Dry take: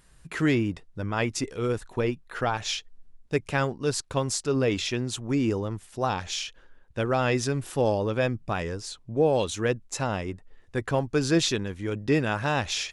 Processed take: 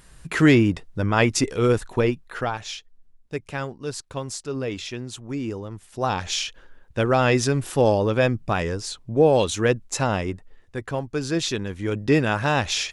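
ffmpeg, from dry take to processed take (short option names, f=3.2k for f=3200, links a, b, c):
-af "volume=24dB,afade=t=out:st=1.74:d=0.94:silence=0.251189,afade=t=in:st=5.7:d=0.62:silence=0.334965,afade=t=out:st=10.27:d=0.5:silence=0.421697,afade=t=in:st=11.39:d=0.48:silence=0.473151"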